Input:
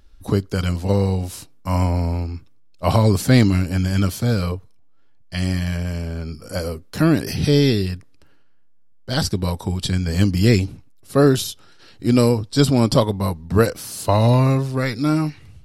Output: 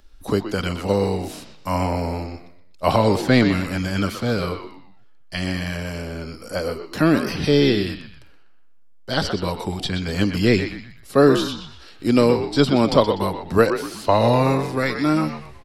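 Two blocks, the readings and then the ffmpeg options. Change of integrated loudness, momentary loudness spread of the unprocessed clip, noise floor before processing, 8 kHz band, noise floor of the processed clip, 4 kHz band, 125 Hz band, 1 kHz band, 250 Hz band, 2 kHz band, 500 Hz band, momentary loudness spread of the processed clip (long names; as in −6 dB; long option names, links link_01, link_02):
−1.0 dB, 12 LU, −47 dBFS, −6.5 dB, −44 dBFS, +0.5 dB, −6.5 dB, +3.0 dB, −1.0 dB, +3.0 dB, +2.0 dB, 13 LU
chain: -filter_complex "[0:a]equalizer=frequency=100:width=0.71:gain=-10.5,acrossover=split=300|4500[link_01][link_02][link_03];[link_02]asplit=5[link_04][link_05][link_06][link_07][link_08];[link_05]adelay=123,afreqshift=-83,volume=-7dB[link_09];[link_06]adelay=246,afreqshift=-166,volume=-15.6dB[link_10];[link_07]adelay=369,afreqshift=-249,volume=-24.3dB[link_11];[link_08]adelay=492,afreqshift=-332,volume=-32.9dB[link_12];[link_04][link_09][link_10][link_11][link_12]amix=inputs=5:normalize=0[link_13];[link_03]acompressor=threshold=-45dB:ratio=6[link_14];[link_01][link_13][link_14]amix=inputs=3:normalize=0,volume=2.5dB"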